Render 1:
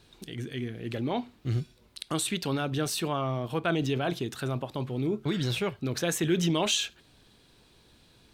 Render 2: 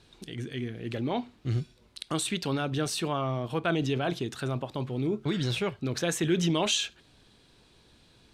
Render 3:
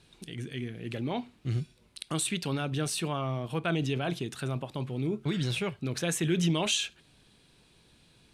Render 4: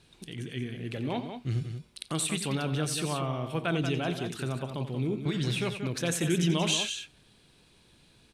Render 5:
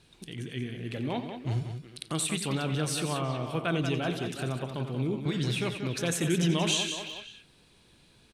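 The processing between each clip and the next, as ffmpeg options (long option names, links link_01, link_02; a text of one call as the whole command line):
ffmpeg -i in.wav -af "lowpass=10000" out.wav
ffmpeg -i in.wav -af "equalizer=frequency=160:width_type=o:width=0.67:gain=5,equalizer=frequency=2500:width_type=o:width=0.67:gain=4,equalizer=frequency=10000:width_type=o:width=0.67:gain=8,volume=-3.5dB" out.wav
ffmpeg -i in.wav -af "aecho=1:1:87.46|183.7:0.251|0.398" out.wav
ffmpeg -i in.wav -filter_complex "[0:a]asplit=2[link_01][link_02];[link_02]adelay=370,highpass=300,lowpass=3400,asoftclip=type=hard:threshold=-24.5dB,volume=-9dB[link_03];[link_01][link_03]amix=inputs=2:normalize=0" out.wav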